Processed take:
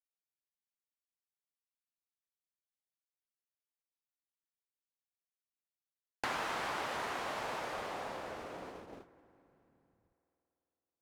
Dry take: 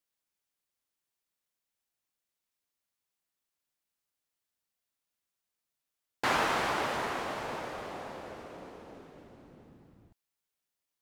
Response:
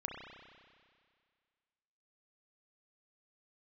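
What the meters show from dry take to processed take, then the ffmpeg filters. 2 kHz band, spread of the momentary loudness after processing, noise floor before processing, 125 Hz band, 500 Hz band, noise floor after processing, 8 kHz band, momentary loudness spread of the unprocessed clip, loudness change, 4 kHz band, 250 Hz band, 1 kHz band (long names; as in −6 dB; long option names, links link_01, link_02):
−5.5 dB, 13 LU, below −85 dBFS, −8.0 dB, −5.5 dB, below −85 dBFS, −5.0 dB, 20 LU, −6.5 dB, −5.5 dB, −7.5 dB, −5.5 dB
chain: -filter_complex "[0:a]agate=range=-21dB:threshold=-48dB:ratio=16:detection=peak,acrossover=split=540|2700[link_01][link_02][link_03];[link_01]acompressor=threshold=-51dB:ratio=4[link_04];[link_02]acompressor=threshold=-40dB:ratio=4[link_05];[link_03]acompressor=threshold=-50dB:ratio=4[link_06];[link_04][link_05][link_06]amix=inputs=3:normalize=0,asplit=2[link_07][link_08];[1:a]atrim=start_sample=2205,asetrate=26901,aresample=44100[link_09];[link_08][link_09]afir=irnorm=-1:irlink=0,volume=-16.5dB[link_10];[link_07][link_10]amix=inputs=2:normalize=0,volume=1dB"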